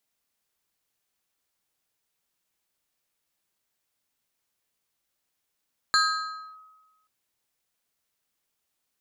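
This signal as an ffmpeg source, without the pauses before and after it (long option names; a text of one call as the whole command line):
ffmpeg -f lavfi -i "aevalsrc='0.158*pow(10,-3*t/1.25)*sin(2*PI*1270*t+1.4*clip(1-t/0.63,0,1)*sin(2*PI*2.27*1270*t))':duration=1.13:sample_rate=44100" out.wav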